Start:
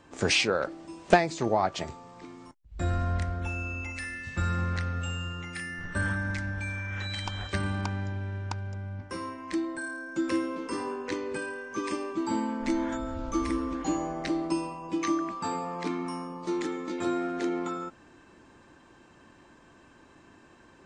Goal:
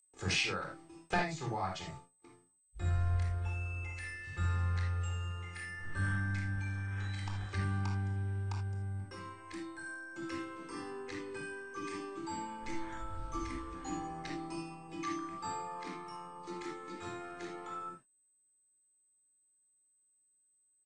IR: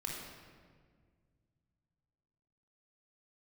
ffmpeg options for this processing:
-filter_complex "[0:a]agate=range=0.01:threshold=0.00708:ratio=16:detection=peak,aeval=exprs='val(0)+0.00282*sin(2*PI*8200*n/s)':c=same,acrossover=split=270|640|4000[s0][s1][s2][s3];[s1]acompressor=threshold=0.00316:ratio=6[s4];[s0][s4][s2][s3]amix=inputs=4:normalize=0,asplit=2[s5][s6];[s6]adelay=23,volume=0.224[s7];[s5][s7]amix=inputs=2:normalize=0[s8];[1:a]atrim=start_sample=2205,atrim=end_sample=3969[s9];[s8][s9]afir=irnorm=-1:irlink=0,volume=0.473"

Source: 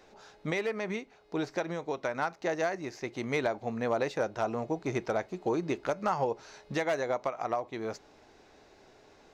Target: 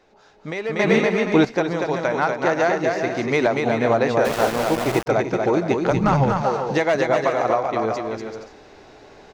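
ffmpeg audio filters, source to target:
-filter_complex "[0:a]highshelf=f=7400:g=-10,aecho=1:1:240|384|470.4|522.2|553.3:0.631|0.398|0.251|0.158|0.1,asettb=1/sr,asplit=3[s0][s1][s2];[s0]atrim=end=0.794[s3];[s1]atrim=start=0.79:end=1.45,asetpts=PTS-STARTPTS,afade=t=in:d=0.004:c=qsin,afade=t=out:st=0.656:d=0.004:c=qsin,acontrast=70[s4];[s2]atrim=start=1.446[s5];[s3][s4]acrossfade=d=0.004:c1=hsin:c2=qsin[s6];[s6][s5]acrossfade=d=0.004:c1=qsin:c2=hsin,asplit=3[s7][s8][s9];[s7]afade=t=out:st=5.9:d=0.02[s10];[s8]asubboost=boost=9.5:cutoff=130,afade=t=in:st=5.9:d=0.02,afade=t=out:st=6.41:d=0.02[s11];[s9]afade=t=in:st=6.41:d=0.02[s12];[s10][s11][s12]amix=inputs=3:normalize=0,dynaudnorm=f=490:g=3:m=3.35,asplit=3[s13][s14][s15];[s13]afade=t=out:st=4.24:d=0.02[s16];[s14]aeval=exprs='val(0)*gte(abs(val(0)),0.075)':c=same,afade=t=in:st=4.24:d=0.02,afade=t=out:st=5.06:d=0.02[s17];[s15]afade=t=in:st=5.06:d=0.02[s18];[s16][s17][s18]amix=inputs=3:normalize=0"

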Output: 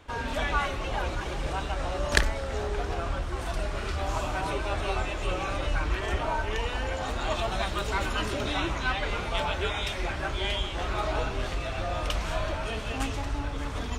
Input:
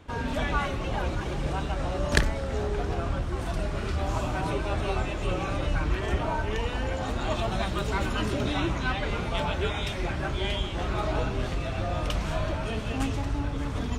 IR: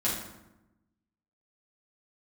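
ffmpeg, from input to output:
-af "equalizer=f=160:w=0.53:g=-9.5,volume=1.26"

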